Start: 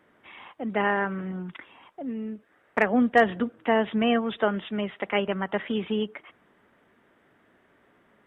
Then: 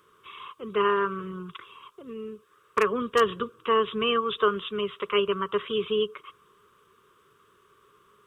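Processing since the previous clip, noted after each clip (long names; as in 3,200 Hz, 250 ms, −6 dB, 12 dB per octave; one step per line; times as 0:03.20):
drawn EQ curve 150 Hz 0 dB, 280 Hz −14 dB, 410 Hz +7 dB, 770 Hz −24 dB, 1,100 Hz +13 dB, 1,900 Hz −10 dB, 2,700 Hz +4 dB, 5,900 Hz +12 dB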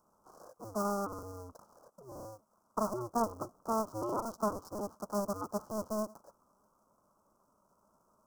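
sub-harmonics by changed cycles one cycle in 2, inverted
elliptic band-stop filter 1,200–5,500 Hz, stop band 40 dB
level −8.5 dB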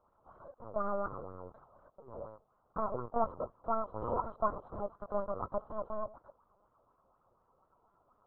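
linear-prediction vocoder at 8 kHz pitch kept
auto-filter bell 4.1 Hz 490–2,100 Hz +9 dB
level −2.5 dB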